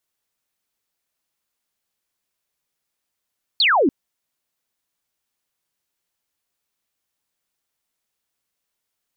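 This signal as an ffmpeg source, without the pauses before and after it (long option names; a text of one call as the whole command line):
ffmpeg -f lavfi -i "aevalsrc='0.224*clip(t/0.002,0,1)*clip((0.29-t)/0.002,0,1)*sin(2*PI*4600*0.29/log(240/4600)*(exp(log(240/4600)*t/0.29)-1))':duration=0.29:sample_rate=44100" out.wav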